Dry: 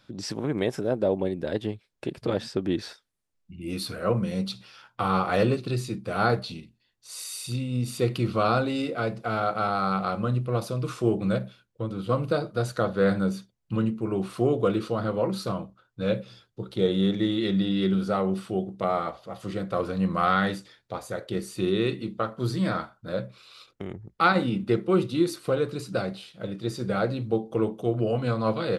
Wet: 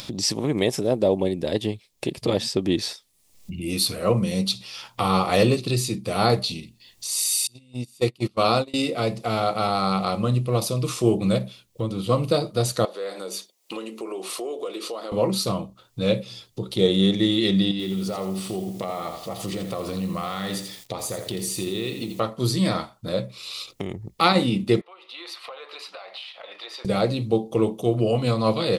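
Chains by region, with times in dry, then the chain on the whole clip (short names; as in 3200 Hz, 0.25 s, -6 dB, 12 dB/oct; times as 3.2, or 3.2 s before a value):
7.47–8.74 gate -25 dBFS, range -30 dB + low shelf 130 Hz -7.5 dB
12.85–15.12 HPF 360 Hz 24 dB/oct + compressor 2:1, threshold -41 dBFS
17.71–22.2 compressor 4:1, threshold -30 dBFS + lo-fi delay 84 ms, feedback 35%, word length 9-bit, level -8 dB
24.81–26.85 HPF 780 Hz 24 dB/oct + air absorption 390 m + compressor 2.5:1, threshold -54 dBFS
whole clip: high shelf 3200 Hz +11.5 dB; upward compressor, threshold -30 dBFS; bell 1500 Hz -13 dB 0.33 oct; gain +4 dB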